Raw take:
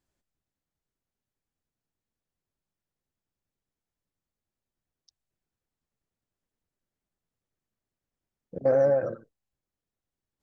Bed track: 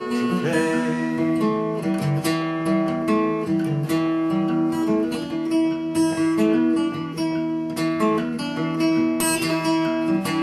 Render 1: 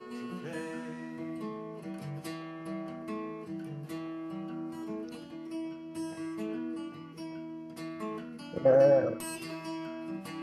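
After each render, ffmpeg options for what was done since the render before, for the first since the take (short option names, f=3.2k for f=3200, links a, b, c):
-filter_complex "[1:a]volume=-18dB[a];[0:a][a]amix=inputs=2:normalize=0"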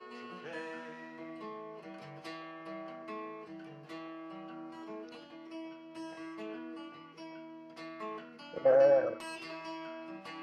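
-filter_complex "[0:a]acrossover=split=420 5700:gain=0.2 1 0.0891[a][b][c];[a][b][c]amix=inputs=3:normalize=0"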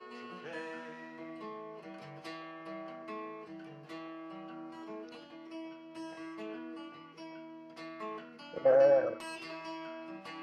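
-af anull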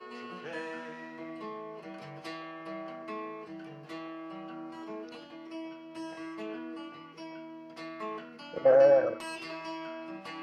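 -af "volume=3.5dB"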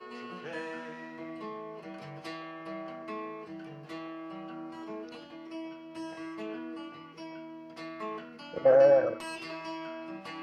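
-af "lowshelf=f=120:g=5.5"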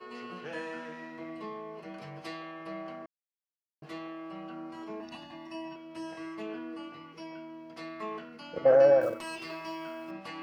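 -filter_complex "[0:a]asettb=1/sr,asplit=3[a][b][c];[a]atrim=end=5.004[d];[b]atrim=start=5:end=5.76,asetpts=PTS-STARTPTS,afade=t=in:d=0.004:c=qsin,afade=t=out:st=0.756:d=0.004:c=qsin,aecho=1:1:1.1:0.99,atrim=end_sample=33516[e];[c]atrim=start=5.756[f];[d][e]acrossfade=d=0.004:c1=hsin:c2=qsin[g];[g][f]acrossfade=d=0.004:c1=qsin:c2=hsin,asettb=1/sr,asplit=3[h][i][j];[h]atrim=end=9.014[k];[i]atrim=start=9.01:end=10.11,asetpts=PTS-STARTPTS,afade=t=in:d=0.004:c=qsin,afade=t=out:st=1.096:d=0.004:c=qsin,acrusher=bits=7:mode=log:mix=0:aa=0.000001[l];[j]atrim=start=10.106[m];[k][l]acrossfade=d=0.004:c1=hsin:c2=qsin[n];[n][m]acrossfade=d=0.004:c1=qsin:c2=hsin,asplit=3[o][p][q];[o]atrim=end=3.06,asetpts=PTS-STARTPTS,afade=t=out:st=3.056:d=0.004:c=hsin[r];[p]atrim=start=3.06:end=3.82,asetpts=PTS-STARTPTS,volume=0[s];[q]atrim=start=3.82,asetpts=PTS-STARTPTS,afade=t=in:d=0.004:c=hsin[t];[r][s][t]concat=n=3:v=0:a=1"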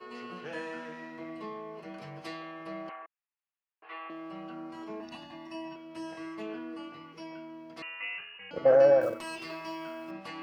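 -filter_complex "[0:a]asettb=1/sr,asplit=3[a][b][c];[a]atrim=end=2.894[d];[b]atrim=start=2.89:end=4.1,asetpts=PTS-STARTPTS,afade=t=in:d=0.004:c=qsin,afade=t=out:st=1.206:d=0.004:c=qsin,highpass=f=490:w=0.5412,highpass=f=490:w=1.3066,equalizer=f=590:t=q:w=4:g=-10,equalizer=f=860:t=q:w=4:g=5,equalizer=f=1.2k:t=q:w=4:g=5,equalizer=f=1.8k:t=q:w=4:g=4,equalizer=f=2.6k:t=q:w=4:g=6,lowpass=f=2.9k:w=0.5412,lowpass=f=2.9k:w=1.3066[e];[c]atrim=start=4.096[f];[d][e]acrossfade=d=0.004:c1=hsin:c2=qsin[g];[g][f]acrossfade=d=0.004:c1=qsin:c2=hsin,asettb=1/sr,asplit=3[h][i][j];[h]atrim=end=7.824[k];[i]atrim=start=7.82:end=8.51,asetpts=PTS-STARTPTS,afade=t=in:d=0.004:c=qsin,afade=t=out:st=0.686:d=0.004:c=qsin,lowpass=f=2.6k:t=q:w=0.5098,lowpass=f=2.6k:t=q:w=0.6013,lowpass=f=2.6k:t=q:w=0.9,lowpass=f=2.6k:t=q:w=2.563,afreqshift=-3100[l];[j]atrim=start=8.506[m];[k][l]acrossfade=d=0.004:c1=hsin:c2=qsin[n];[n][m]acrossfade=d=0.004:c1=qsin:c2=hsin"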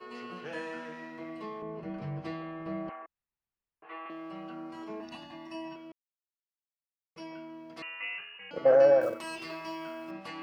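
-filter_complex "[0:a]asettb=1/sr,asplit=3[a][b][c];[a]atrim=end=1.624[d];[b]atrim=start=1.62:end=4.06,asetpts=PTS-STARTPTS,afade=t=in:d=0.004:c=qsin,afade=t=out:st=2.436:d=0.004:c=qsin,aemphasis=mode=reproduction:type=riaa[e];[c]atrim=start=4.056[f];[d][e]acrossfade=d=0.004:c1=hsin:c2=qsin[g];[g][f]acrossfade=d=0.004:c1=qsin:c2=hsin,asettb=1/sr,asplit=3[h][i][j];[h]atrim=end=8.164[k];[i]atrim=start=8.16:end=9.24,asetpts=PTS-STARTPTS,afade=t=in:d=0.004:c=qsin,afade=t=out:st=1.076:d=0.004:c=qsin,highpass=f=140:p=1[l];[j]atrim=start=9.236[m];[k][l]acrossfade=d=0.004:c1=hsin:c2=qsin[n];[n][m]acrossfade=d=0.004:c1=qsin:c2=hsin,asplit=3[o][p][q];[o]atrim=end=5.92,asetpts=PTS-STARTPTS,afade=t=out:st=5.916:d=0.004:c=hsin[r];[p]atrim=start=5.92:end=7.16,asetpts=PTS-STARTPTS,volume=0[s];[q]atrim=start=7.16,asetpts=PTS-STARTPTS,afade=t=in:d=0.004:c=hsin[t];[r][s][t]concat=n=3:v=0:a=1"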